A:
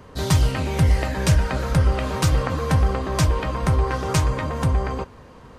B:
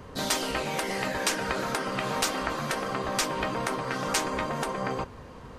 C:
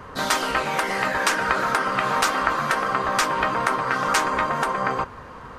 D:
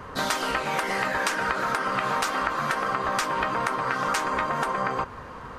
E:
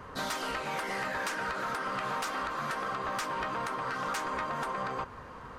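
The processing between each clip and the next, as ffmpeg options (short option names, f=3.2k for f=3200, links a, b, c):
-af "afftfilt=real='re*lt(hypot(re,im),0.224)':imag='im*lt(hypot(re,im),0.224)':win_size=1024:overlap=0.75"
-af "equalizer=f=1.3k:t=o:w=1.5:g=11,volume=1dB"
-af "acompressor=threshold=-22dB:ratio=6"
-af "asoftclip=type=tanh:threshold=-20dB,volume=-6dB"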